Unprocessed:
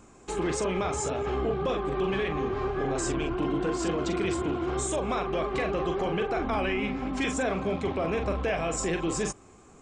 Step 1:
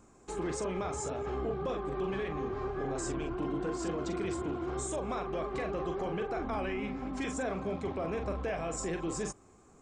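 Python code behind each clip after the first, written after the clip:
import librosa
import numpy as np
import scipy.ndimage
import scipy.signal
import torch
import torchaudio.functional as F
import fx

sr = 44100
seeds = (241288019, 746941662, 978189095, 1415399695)

y = fx.peak_eq(x, sr, hz=2900.0, db=-5.5, octaves=1.0)
y = y * librosa.db_to_amplitude(-6.0)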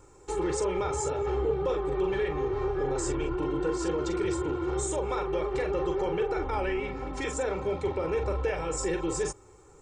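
y = x + 0.93 * np.pad(x, (int(2.2 * sr / 1000.0), 0))[:len(x)]
y = y * librosa.db_to_amplitude(2.5)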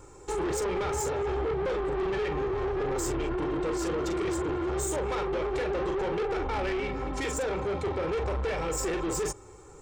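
y = 10.0 ** (-31.5 / 20.0) * np.tanh(x / 10.0 ** (-31.5 / 20.0))
y = y * librosa.db_to_amplitude(5.0)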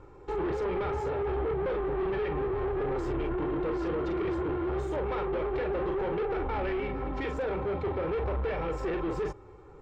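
y = fx.air_absorb(x, sr, metres=330.0)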